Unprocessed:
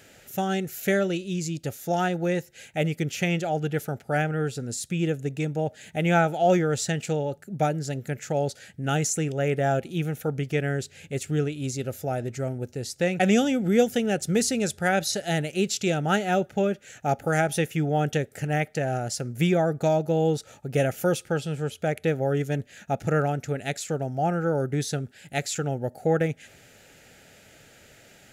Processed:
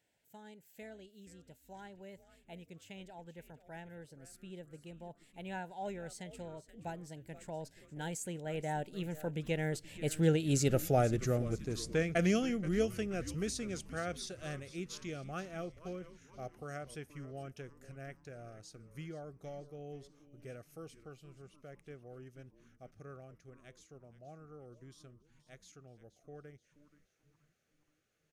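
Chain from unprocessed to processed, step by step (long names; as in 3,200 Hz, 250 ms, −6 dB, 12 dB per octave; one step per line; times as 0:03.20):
source passing by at 0:10.77, 34 m/s, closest 15 metres
echo with shifted repeats 477 ms, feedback 49%, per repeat −150 Hz, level −15 dB
level +1 dB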